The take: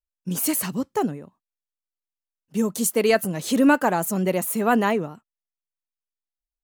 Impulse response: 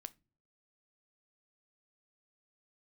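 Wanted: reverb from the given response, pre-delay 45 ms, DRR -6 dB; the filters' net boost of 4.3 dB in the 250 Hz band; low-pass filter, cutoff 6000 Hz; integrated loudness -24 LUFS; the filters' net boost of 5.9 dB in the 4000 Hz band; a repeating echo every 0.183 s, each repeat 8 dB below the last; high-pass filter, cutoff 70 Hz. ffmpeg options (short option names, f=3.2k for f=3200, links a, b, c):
-filter_complex "[0:a]highpass=70,lowpass=6k,equalizer=f=250:t=o:g=5,equalizer=f=4k:t=o:g=8.5,aecho=1:1:183|366|549|732|915:0.398|0.159|0.0637|0.0255|0.0102,asplit=2[a][b];[1:a]atrim=start_sample=2205,adelay=45[c];[b][c]afir=irnorm=-1:irlink=0,volume=11.5dB[d];[a][d]amix=inputs=2:normalize=0,volume=-11.5dB"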